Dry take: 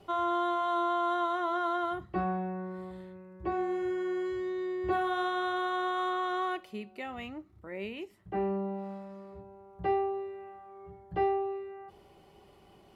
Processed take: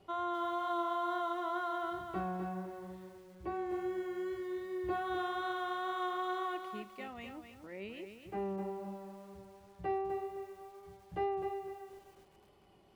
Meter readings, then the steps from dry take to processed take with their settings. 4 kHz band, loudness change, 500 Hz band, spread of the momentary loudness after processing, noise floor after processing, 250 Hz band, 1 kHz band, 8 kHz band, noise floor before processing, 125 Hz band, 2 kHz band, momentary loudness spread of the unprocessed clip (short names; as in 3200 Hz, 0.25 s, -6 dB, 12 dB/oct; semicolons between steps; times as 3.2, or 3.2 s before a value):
-5.5 dB, -6.0 dB, -5.5 dB, 15 LU, -64 dBFS, -5.5 dB, -5.5 dB, n/a, -59 dBFS, -6.0 dB, -5.5 dB, 17 LU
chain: wow and flutter 24 cents; lo-fi delay 0.255 s, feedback 35%, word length 9-bit, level -6.5 dB; gain -6.5 dB